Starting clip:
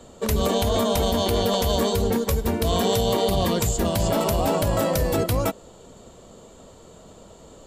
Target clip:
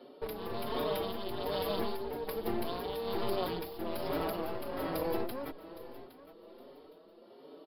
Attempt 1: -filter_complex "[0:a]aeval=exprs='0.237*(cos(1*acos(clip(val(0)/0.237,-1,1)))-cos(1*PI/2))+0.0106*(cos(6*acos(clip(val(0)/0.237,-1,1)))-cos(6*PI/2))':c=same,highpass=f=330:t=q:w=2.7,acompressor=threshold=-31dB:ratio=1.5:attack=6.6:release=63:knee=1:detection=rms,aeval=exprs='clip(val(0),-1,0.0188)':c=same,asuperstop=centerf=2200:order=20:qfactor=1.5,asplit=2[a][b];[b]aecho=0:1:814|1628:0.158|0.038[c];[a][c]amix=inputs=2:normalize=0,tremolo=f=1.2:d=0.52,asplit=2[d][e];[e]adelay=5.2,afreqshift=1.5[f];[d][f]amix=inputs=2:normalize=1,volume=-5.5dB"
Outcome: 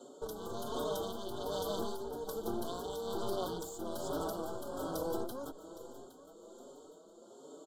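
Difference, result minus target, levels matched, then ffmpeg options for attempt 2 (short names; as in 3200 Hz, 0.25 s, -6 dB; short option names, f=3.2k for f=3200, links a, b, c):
8000 Hz band +10.0 dB; compressor: peak gain reduction +3.5 dB
-filter_complex "[0:a]aeval=exprs='0.237*(cos(1*acos(clip(val(0)/0.237,-1,1)))-cos(1*PI/2))+0.0106*(cos(6*acos(clip(val(0)/0.237,-1,1)))-cos(6*PI/2))':c=same,highpass=f=330:t=q:w=2.7,acompressor=threshold=-21dB:ratio=1.5:attack=6.6:release=63:knee=1:detection=rms,aeval=exprs='clip(val(0),-1,0.0188)':c=same,asuperstop=centerf=7500:order=20:qfactor=1.5,asplit=2[a][b];[b]aecho=0:1:814|1628:0.158|0.038[c];[a][c]amix=inputs=2:normalize=0,tremolo=f=1.2:d=0.52,asplit=2[d][e];[e]adelay=5.2,afreqshift=1.5[f];[d][f]amix=inputs=2:normalize=1,volume=-5.5dB"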